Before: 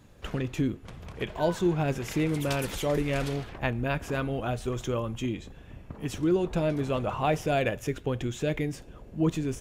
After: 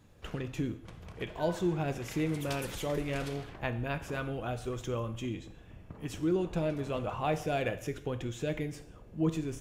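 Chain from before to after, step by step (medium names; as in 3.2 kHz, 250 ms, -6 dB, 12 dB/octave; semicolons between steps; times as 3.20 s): gated-style reverb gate 230 ms falling, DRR 9.5 dB; trim -5.5 dB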